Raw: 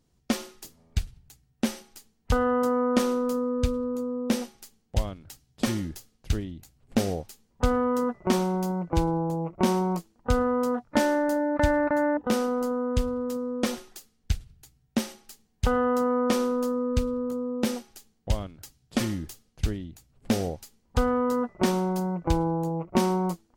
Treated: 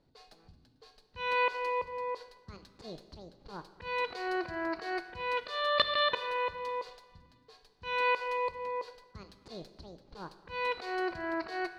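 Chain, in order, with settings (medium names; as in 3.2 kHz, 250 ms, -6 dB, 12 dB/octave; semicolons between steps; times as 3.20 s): slow attack 604 ms; resonant low-pass 2.2 kHz, resonance Q 8.3; on a send: thinning echo 446 ms, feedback 57%, high-pass 290 Hz, level -20 dB; on the sum: Schroeder reverb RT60 2.2 s, combs from 31 ms, DRR 10.5 dB; speed mistake 7.5 ips tape played at 15 ips; tape noise reduction on one side only decoder only; trim -1.5 dB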